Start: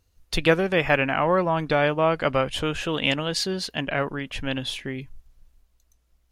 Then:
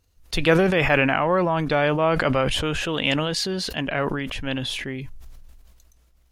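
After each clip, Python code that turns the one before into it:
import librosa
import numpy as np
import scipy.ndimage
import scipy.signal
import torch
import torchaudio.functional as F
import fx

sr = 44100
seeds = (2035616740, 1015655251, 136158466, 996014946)

y = fx.sustainer(x, sr, db_per_s=26.0)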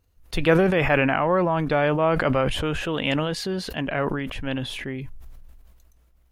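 y = fx.peak_eq(x, sr, hz=5600.0, db=-7.5, octaves=2.0)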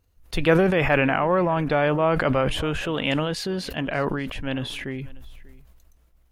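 y = x + 10.0 ** (-22.5 / 20.0) * np.pad(x, (int(590 * sr / 1000.0), 0))[:len(x)]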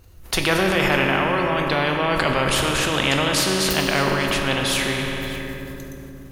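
y = fx.rider(x, sr, range_db=3, speed_s=2.0)
y = fx.rev_fdn(y, sr, rt60_s=2.4, lf_ratio=1.4, hf_ratio=0.7, size_ms=16.0, drr_db=3.5)
y = fx.spectral_comp(y, sr, ratio=2.0)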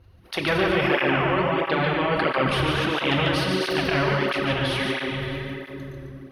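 y = np.convolve(x, np.full(6, 1.0 / 6))[:len(x)]
y = y + 10.0 ** (-5.0 / 20.0) * np.pad(y, (int(145 * sr / 1000.0), 0))[:len(y)]
y = fx.flanger_cancel(y, sr, hz=1.5, depth_ms=5.0)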